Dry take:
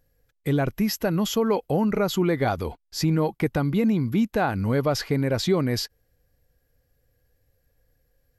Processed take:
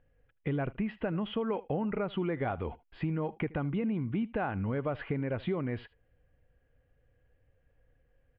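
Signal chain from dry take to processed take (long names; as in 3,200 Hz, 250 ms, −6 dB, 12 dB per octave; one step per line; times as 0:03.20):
downward compressor 3 to 1, threshold −31 dBFS, peak gain reduction 11 dB
elliptic low-pass filter 3,000 Hz, stop band 50 dB
on a send: single-tap delay 77 ms −21 dB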